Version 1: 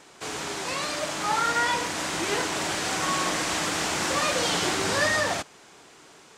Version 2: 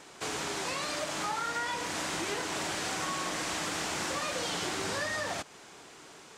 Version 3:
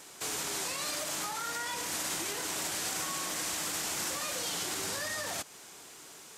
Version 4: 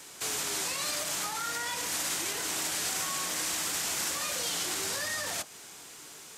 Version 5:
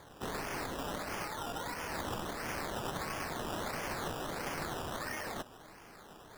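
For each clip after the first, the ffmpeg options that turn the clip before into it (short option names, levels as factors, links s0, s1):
-af "acompressor=threshold=0.0282:ratio=6"
-af "alimiter=level_in=1.33:limit=0.0631:level=0:latency=1:release=27,volume=0.75,equalizer=f=13000:w=1.7:g=8.5,crystalizer=i=2:c=0,volume=0.668"
-filter_complex "[0:a]acrossover=split=240|1200[s0][s1][s2];[s0]alimiter=level_in=20:limit=0.0631:level=0:latency=1,volume=0.0501[s3];[s1]flanger=delay=20:depth=3.7:speed=0.49[s4];[s3][s4][s2]amix=inputs=3:normalize=0,volume=1.41"
-af "acrusher=samples=16:mix=1:aa=0.000001:lfo=1:lforange=9.6:lforate=1.5,volume=0.501"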